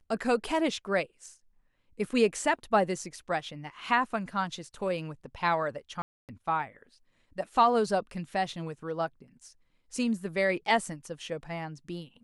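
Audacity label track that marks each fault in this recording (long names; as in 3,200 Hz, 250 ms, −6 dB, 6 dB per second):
6.020000	6.290000	drop-out 268 ms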